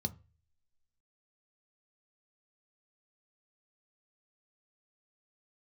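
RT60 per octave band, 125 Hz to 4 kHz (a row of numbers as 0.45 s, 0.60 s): 0.55 s, 0.30 s, 0.35 s, 0.30 s, 0.40 s, 0.30 s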